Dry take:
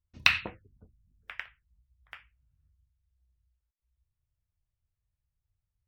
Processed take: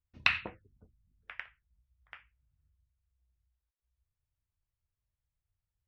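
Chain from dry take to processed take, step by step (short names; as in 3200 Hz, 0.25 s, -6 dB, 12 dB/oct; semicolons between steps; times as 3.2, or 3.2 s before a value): LPF 11000 Hz; tone controls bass -2 dB, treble -11 dB; gain -2.5 dB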